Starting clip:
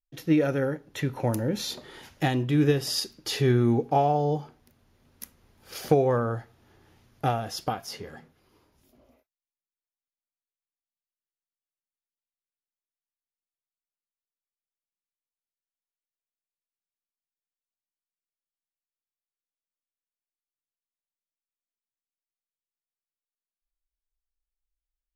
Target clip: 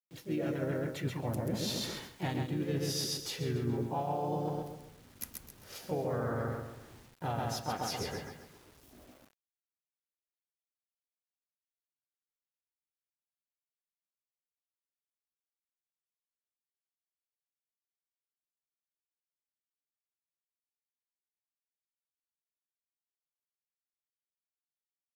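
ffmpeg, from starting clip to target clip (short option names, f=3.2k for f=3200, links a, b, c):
-filter_complex "[0:a]aecho=1:1:133|266|399|532|665:0.562|0.208|0.077|0.0285|0.0105,asplit=3[a][b][c];[b]asetrate=33038,aresample=44100,atempo=1.33484,volume=-13dB[d];[c]asetrate=52444,aresample=44100,atempo=0.840896,volume=-5dB[e];[a][d][e]amix=inputs=3:normalize=0,areverse,acompressor=threshold=-33dB:ratio=6,areverse,lowshelf=f=150:g=4,acrusher=bits=9:mix=0:aa=0.000001"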